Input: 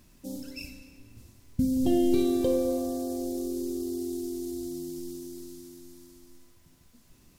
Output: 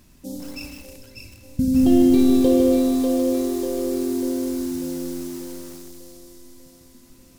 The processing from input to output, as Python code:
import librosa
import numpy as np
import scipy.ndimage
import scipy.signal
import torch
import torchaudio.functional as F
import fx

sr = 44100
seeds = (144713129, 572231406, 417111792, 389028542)

y = fx.echo_split(x, sr, split_hz=310.0, low_ms=84, high_ms=593, feedback_pct=52, wet_db=-5.0)
y = fx.echo_crushed(y, sr, ms=154, feedback_pct=55, bits=7, wet_db=-6)
y = y * librosa.db_to_amplitude(4.5)